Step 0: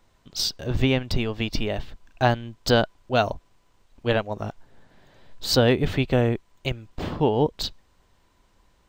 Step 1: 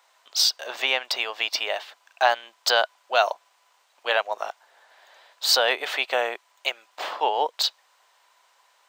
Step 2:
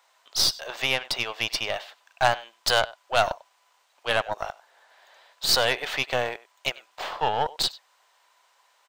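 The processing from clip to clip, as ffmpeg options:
ffmpeg -i in.wav -filter_complex "[0:a]highpass=frequency=670:width=0.5412,highpass=frequency=670:width=1.3066,asplit=2[link_01][link_02];[link_02]alimiter=limit=-17.5dB:level=0:latency=1:release=16,volume=1dB[link_03];[link_01][link_03]amix=inputs=2:normalize=0" out.wav
ffmpeg -i in.wav -af "aecho=1:1:96:0.1,aeval=exprs='0.562*(cos(1*acos(clip(val(0)/0.562,-1,1)))-cos(1*PI/2))+0.0631*(cos(3*acos(clip(val(0)/0.562,-1,1)))-cos(3*PI/2))+0.0251*(cos(4*acos(clip(val(0)/0.562,-1,1)))-cos(4*PI/2))+0.0178*(cos(5*acos(clip(val(0)/0.562,-1,1)))-cos(5*PI/2))+0.0562*(cos(6*acos(clip(val(0)/0.562,-1,1)))-cos(6*PI/2))':channel_layout=same" out.wav

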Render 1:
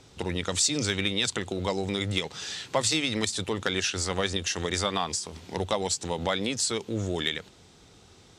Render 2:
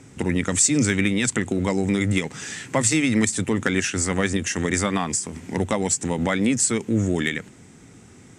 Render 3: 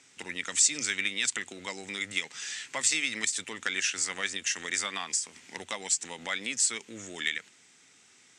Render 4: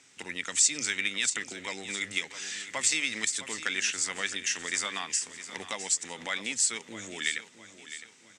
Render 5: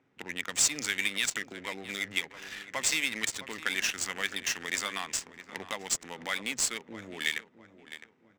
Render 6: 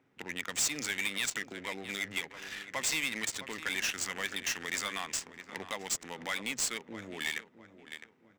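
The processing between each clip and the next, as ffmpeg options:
ffmpeg -i in.wav -af "equalizer=frequency=125:width_type=o:width=1:gain=8,equalizer=frequency=250:width_type=o:width=1:gain=12,equalizer=frequency=2000:width_type=o:width=1:gain=10,equalizer=frequency=4000:width_type=o:width=1:gain=-11,equalizer=frequency=8000:width_type=o:width=1:gain=11" out.wav
ffmpeg -i in.wav -af "bandpass=frequency=4000:width_type=q:width=0.91:csg=0" out.wav
ffmpeg -i in.wav -af "aecho=1:1:660|1320|1980|2640:0.224|0.0918|0.0376|0.0154" out.wav
ffmpeg -i in.wav -af "adynamicsmooth=sensitivity=8:basefreq=890" out.wav
ffmpeg -i in.wav -af "asoftclip=type=tanh:threshold=-24.5dB" out.wav

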